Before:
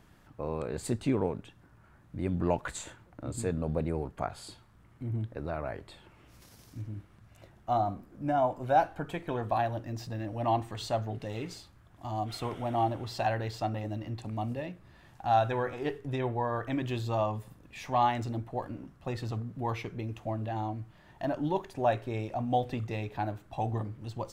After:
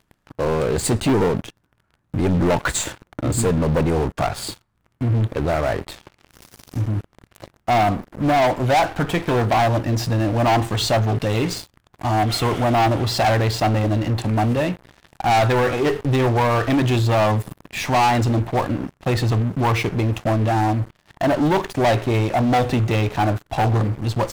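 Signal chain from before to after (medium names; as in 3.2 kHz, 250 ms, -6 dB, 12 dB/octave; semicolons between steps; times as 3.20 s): waveshaping leveller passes 5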